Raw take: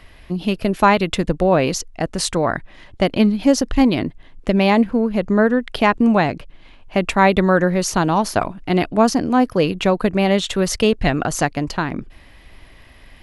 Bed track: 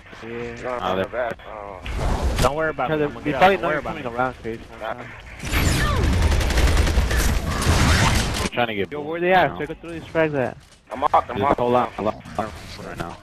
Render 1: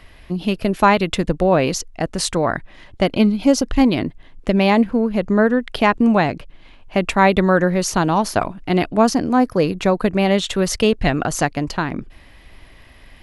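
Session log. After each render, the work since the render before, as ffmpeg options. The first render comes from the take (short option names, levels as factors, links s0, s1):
-filter_complex "[0:a]asettb=1/sr,asplit=3[s0][s1][s2];[s0]atrim=end=3.064[s3];[s1]atrim=start=3.06:end=3.67,asetpts=PTS-STARTPTS,afade=t=in:d=0.004:c=qsin,afade=t=out:st=0.606:d=0.004:c=qsin,asuperstop=centerf=1800:order=12:qfactor=6.6[s4];[s2]atrim=start=3.666[s5];[s3][s4]acrossfade=d=0.004:c1=hsin:c2=qsin[s6];[s6][s5]acrossfade=d=0.004:c1=qsin:c2=hsin,asettb=1/sr,asplit=3[s7][s8][s9];[s7]atrim=end=9.294[s10];[s8]atrim=start=9.29:end=10.01,asetpts=PTS-STARTPTS,afade=t=in:d=0.004:c=qsin,afade=t=out:st=0.716:d=0.004:c=qsin,equalizer=f=3000:t=o:w=0.39:g=-7.5[s11];[s9]atrim=start=10.006[s12];[s10][s11]acrossfade=d=0.004:c1=hsin:c2=qsin[s13];[s13][s12]acrossfade=d=0.004:c1=qsin:c2=hsin"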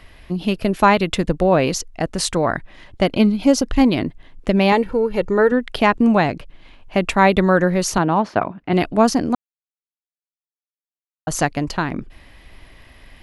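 -filter_complex "[0:a]asettb=1/sr,asplit=3[s0][s1][s2];[s0]atrim=end=4.724[s3];[s1]atrim=start=4.72:end=5.52,asetpts=PTS-STARTPTS,afade=t=in:d=0.004:c=qsin,afade=t=out:st=0.796:d=0.004:c=qsin,aecho=1:1:2.2:0.6,atrim=end_sample=35280[s4];[s2]atrim=start=5.516[s5];[s3][s4]acrossfade=d=0.004:c1=hsin:c2=qsin[s6];[s6][s5]acrossfade=d=0.004:c1=qsin:c2=hsin,asettb=1/sr,asplit=3[s7][s8][s9];[s7]atrim=end=7.984[s10];[s8]atrim=start=7.98:end=8.73,asetpts=PTS-STARTPTS,afade=t=in:d=0.004:c=qsin,afade=t=out:st=0.746:d=0.004:c=qsin,highpass=110,lowpass=2400[s11];[s9]atrim=start=8.726[s12];[s10][s11]acrossfade=d=0.004:c1=hsin:c2=qsin[s13];[s13][s12]acrossfade=d=0.004:c1=qsin:c2=hsin,asplit=3[s14][s15][s16];[s14]atrim=end=9.35,asetpts=PTS-STARTPTS,afade=t=out:st=9.346:d=0.004:c=hsin[s17];[s15]atrim=start=9.35:end=11.27,asetpts=PTS-STARTPTS,volume=0[s18];[s16]atrim=start=11.27,asetpts=PTS-STARTPTS,afade=t=in:d=0.004:c=hsin[s19];[s17][s18][s19]concat=n=3:v=0:a=1"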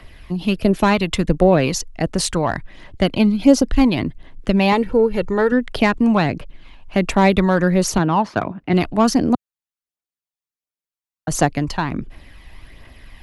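-filter_complex "[0:a]aphaser=in_gain=1:out_gain=1:delay=1.2:decay=0.38:speed=1.4:type=triangular,acrossover=split=100|870|2300[s0][s1][s2][s3];[s2]asoftclip=type=tanh:threshold=0.112[s4];[s0][s1][s4][s3]amix=inputs=4:normalize=0"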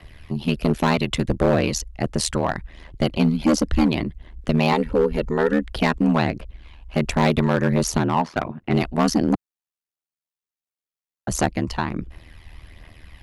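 -filter_complex "[0:a]aeval=exprs='val(0)*sin(2*PI*39*n/s)':c=same,acrossover=split=3200[s0][s1];[s0]volume=3.76,asoftclip=hard,volume=0.266[s2];[s2][s1]amix=inputs=2:normalize=0"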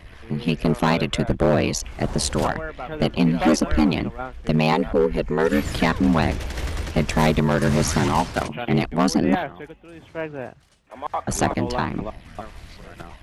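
-filter_complex "[1:a]volume=0.316[s0];[0:a][s0]amix=inputs=2:normalize=0"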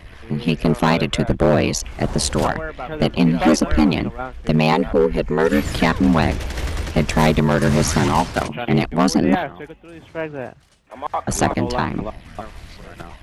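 -af "volume=1.41"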